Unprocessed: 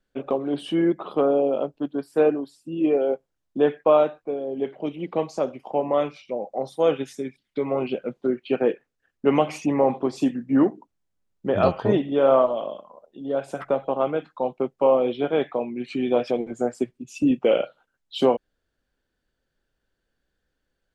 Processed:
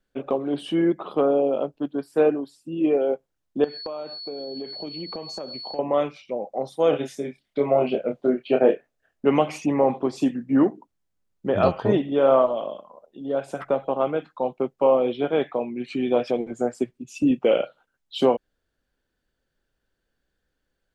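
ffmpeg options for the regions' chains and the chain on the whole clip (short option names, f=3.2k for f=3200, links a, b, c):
-filter_complex "[0:a]asettb=1/sr,asplit=3[a][b][c];[a]atrim=end=3.644[d];[b]atrim=start=3.64:end=5.79,asetpts=PTS-STARTPTS,afade=t=in:d=0.004:c=qsin,afade=t=out:st=2.146:d=0.004:c=qsin,aeval=exprs='val(0)+0.02*sin(2*PI*4400*n/s)':c=same,acompressor=threshold=-29dB:ratio=10:attack=3.2:release=140:knee=1:detection=peak[e];[c]atrim=start=5.786[f];[d][e]acrossfade=d=0.004:c1=hsin:c2=qsin[g];[g][f]acrossfade=d=0.004:c1=qsin:c2=hsin,asettb=1/sr,asplit=3[h][i][j];[h]atrim=end=6.904[k];[i]atrim=start=6.9:end=9.25,asetpts=PTS-STARTPTS,afade=t=in:d=0.004:c=qsin,afade=t=out:st=2.346:d=0.004:c=qsin,equalizer=f=640:w=3.4:g=11,asplit=2[l][m];[m]adelay=28,volume=-5dB[n];[l][n]amix=inputs=2:normalize=0,atrim=end_sample=103635[o];[j]atrim=start=9.246[p];[k][o]acrossfade=d=0.004:c1=hsin:c2=qsin[q];[q][p]acrossfade=d=0.004:c1=qsin:c2=hsin"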